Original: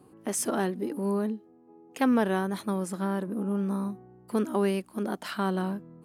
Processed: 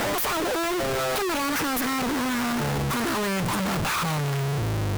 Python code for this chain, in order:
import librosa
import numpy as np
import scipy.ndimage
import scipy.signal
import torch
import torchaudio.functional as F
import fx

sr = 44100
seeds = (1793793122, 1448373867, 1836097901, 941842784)

y = fx.speed_glide(x, sr, from_pct=184, to_pct=59)
y = fx.power_curve(y, sr, exponent=0.5)
y = fx.graphic_eq(y, sr, hz=(125, 250, 500, 1000, 2000, 4000, 8000), db=(4, -7, -10, 4, 6, -7, -6))
y = fx.schmitt(y, sr, flips_db=-41.5)
y = y * 10.0 ** (1.5 / 20.0)